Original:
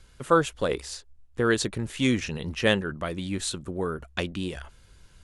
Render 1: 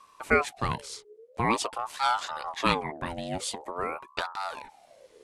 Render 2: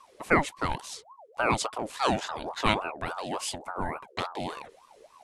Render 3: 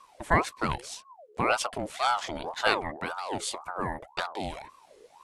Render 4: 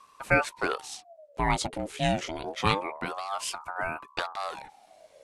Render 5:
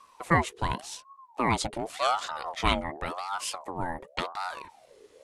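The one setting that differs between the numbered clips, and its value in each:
ring modulator with a swept carrier, at: 0.47 Hz, 3.5 Hz, 1.9 Hz, 0.26 Hz, 0.89 Hz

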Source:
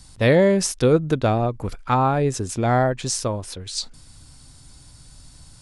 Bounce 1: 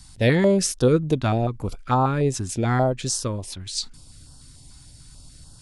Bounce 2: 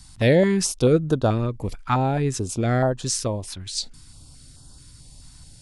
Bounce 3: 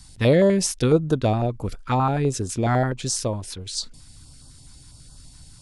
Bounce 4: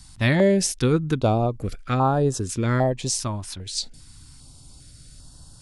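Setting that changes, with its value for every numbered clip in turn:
step-sequenced notch, rate: 6.8 Hz, 4.6 Hz, 12 Hz, 2.5 Hz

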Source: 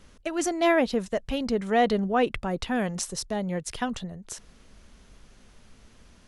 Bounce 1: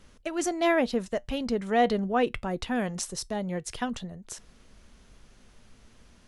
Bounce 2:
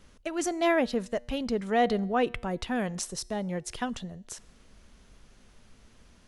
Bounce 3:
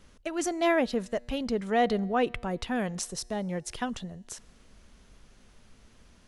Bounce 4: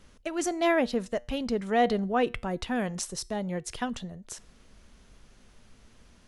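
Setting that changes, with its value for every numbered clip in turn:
feedback comb, decay: 0.15 s, 0.93 s, 2 s, 0.38 s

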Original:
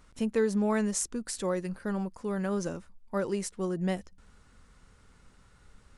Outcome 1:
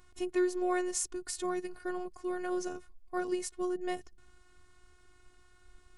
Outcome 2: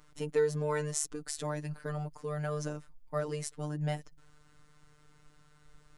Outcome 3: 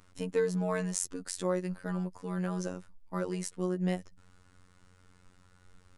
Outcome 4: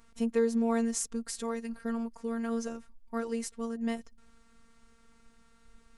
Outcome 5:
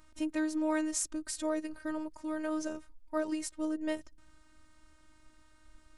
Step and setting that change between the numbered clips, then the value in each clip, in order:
robot voice, frequency: 360 Hz, 150 Hz, 91 Hz, 230 Hz, 310 Hz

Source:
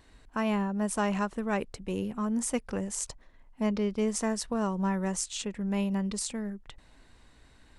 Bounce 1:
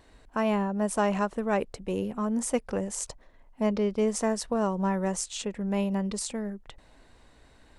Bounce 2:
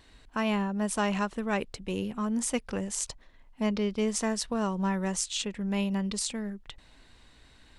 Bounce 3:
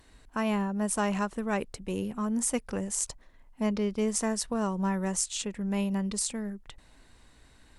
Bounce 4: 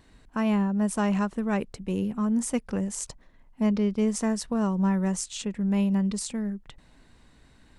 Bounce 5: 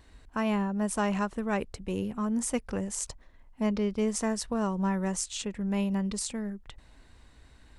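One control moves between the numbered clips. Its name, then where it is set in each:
peaking EQ, frequency: 580 Hz, 3.5 kHz, 13 kHz, 180 Hz, 60 Hz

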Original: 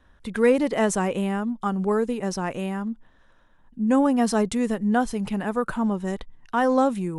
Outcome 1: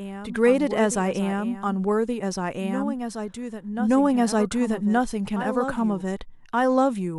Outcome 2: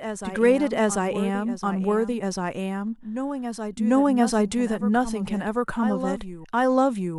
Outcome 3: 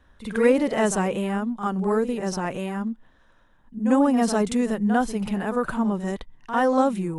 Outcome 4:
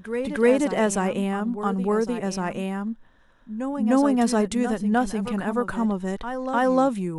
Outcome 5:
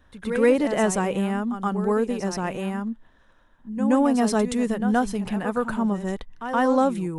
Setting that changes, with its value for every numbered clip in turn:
reverse echo, time: 1174 ms, 743 ms, 49 ms, 304 ms, 123 ms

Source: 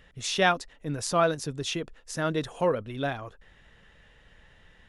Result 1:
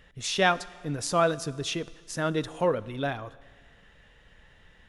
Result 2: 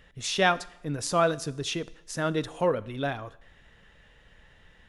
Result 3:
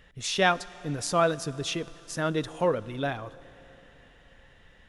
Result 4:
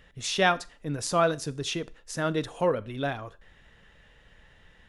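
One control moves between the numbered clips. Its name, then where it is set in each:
Schroeder reverb, RT60: 1.7 s, 0.76 s, 4.2 s, 0.36 s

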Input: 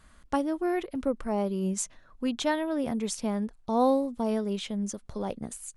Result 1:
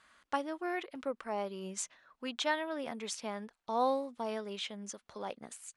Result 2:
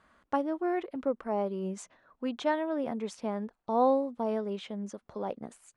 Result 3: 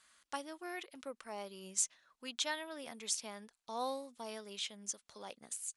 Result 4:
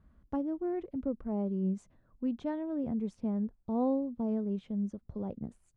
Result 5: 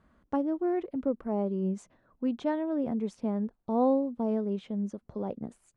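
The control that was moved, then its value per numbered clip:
band-pass filter, frequency: 2.2 kHz, 770 Hz, 6 kHz, 110 Hz, 290 Hz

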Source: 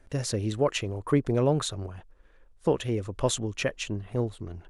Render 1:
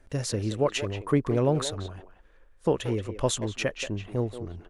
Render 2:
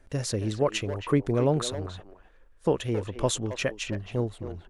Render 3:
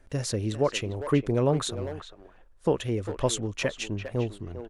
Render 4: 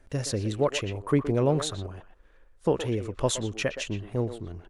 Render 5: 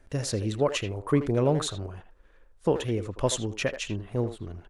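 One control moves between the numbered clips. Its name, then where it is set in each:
speakerphone echo, time: 180 ms, 270 ms, 400 ms, 120 ms, 80 ms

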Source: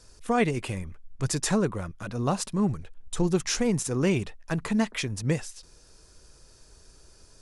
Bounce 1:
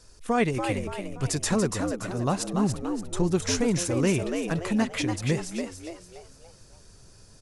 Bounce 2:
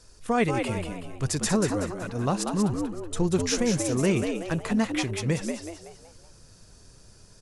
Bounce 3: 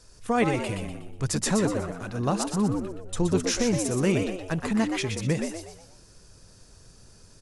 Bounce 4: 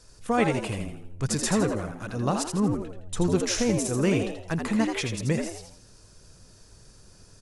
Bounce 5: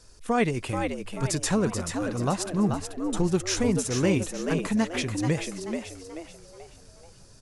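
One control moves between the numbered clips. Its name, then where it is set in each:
frequency-shifting echo, time: 287 ms, 188 ms, 122 ms, 82 ms, 434 ms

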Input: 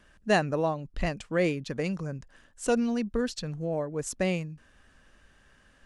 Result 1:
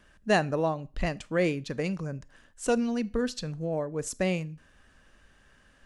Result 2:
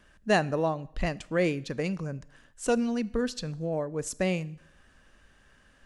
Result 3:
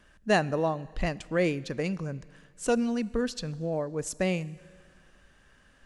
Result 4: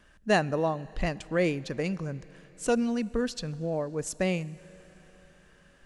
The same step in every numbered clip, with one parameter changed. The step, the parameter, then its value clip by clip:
Schroeder reverb, RT60: 0.35 s, 0.73 s, 2 s, 4.5 s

